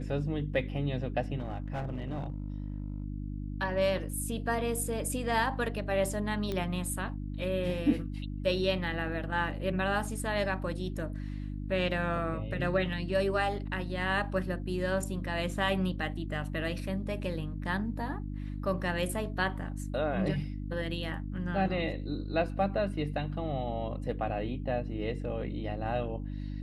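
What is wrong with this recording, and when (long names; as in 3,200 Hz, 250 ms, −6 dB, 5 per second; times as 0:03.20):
mains hum 50 Hz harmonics 6 −37 dBFS
0:01.38–0:03.04: clipping −31 dBFS
0:06.52: click −21 dBFS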